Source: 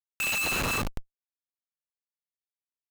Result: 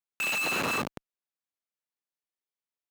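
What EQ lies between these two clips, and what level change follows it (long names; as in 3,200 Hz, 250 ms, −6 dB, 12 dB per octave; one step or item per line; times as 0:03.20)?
high-pass filter 190 Hz 12 dB per octave
high-shelf EQ 4,400 Hz −7.5 dB
+1.5 dB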